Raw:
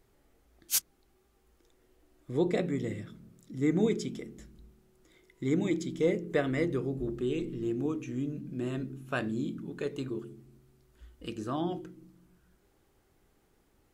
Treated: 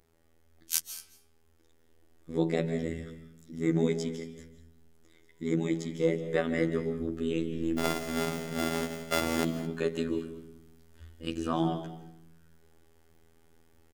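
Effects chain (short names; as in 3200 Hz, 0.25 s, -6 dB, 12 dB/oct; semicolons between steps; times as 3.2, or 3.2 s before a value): 7.78–9.44 sample sorter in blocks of 64 samples; vocal rider 2 s; robotiser 81.9 Hz; echo 0.219 s -18.5 dB; reverb RT60 0.60 s, pre-delay 0.115 s, DRR 10.5 dB; gain +4 dB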